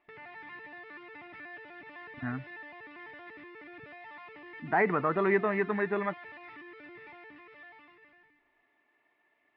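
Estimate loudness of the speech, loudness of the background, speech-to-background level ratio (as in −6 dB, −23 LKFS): −29.5 LKFS, −47.0 LKFS, 17.5 dB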